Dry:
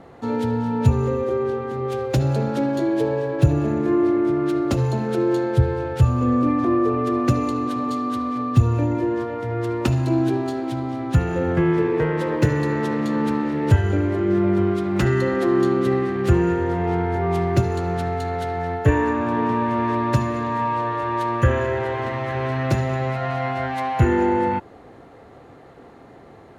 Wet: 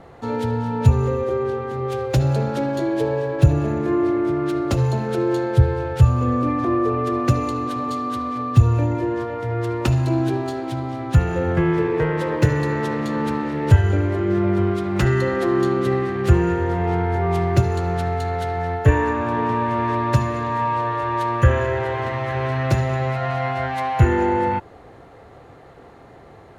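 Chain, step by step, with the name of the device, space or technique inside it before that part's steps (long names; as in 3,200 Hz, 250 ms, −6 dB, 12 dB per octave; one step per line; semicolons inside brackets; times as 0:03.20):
low shelf boost with a cut just above (low-shelf EQ 100 Hz +4.5 dB; parametric band 250 Hz −5.5 dB 1 octave)
level +1.5 dB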